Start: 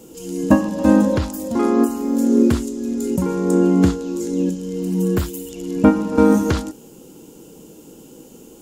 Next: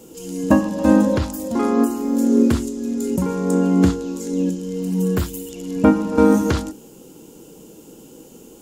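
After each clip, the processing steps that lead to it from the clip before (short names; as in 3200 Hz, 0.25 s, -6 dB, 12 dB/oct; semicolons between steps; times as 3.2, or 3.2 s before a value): notches 50/100/150/200/250/300/350 Hz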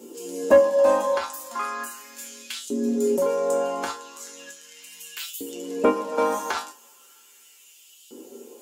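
LFO high-pass saw up 0.37 Hz 300–3400 Hz; resonator 80 Hz, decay 0.23 s, harmonics odd, mix 90%; soft clip -13 dBFS, distortion -22 dB; gain +7.5 dB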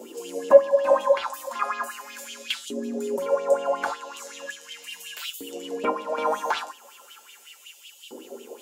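compressor 1.5:1, threshold -43 dBFS, peak gain reduction 11.5 dB; LFO bell 5.4 Hz 570–3300 Hz +17 dB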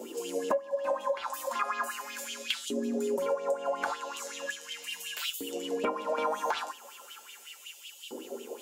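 compressor 16:1, threshold -26 dBFS, peak gain reduction 20 dB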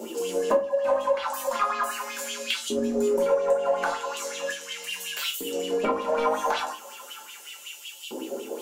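in parallel at -4 dB: soft clip -30 dBFS, distortion -10 dB; on the sum: shoebox room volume 120 m³, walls furnished, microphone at 1.2 m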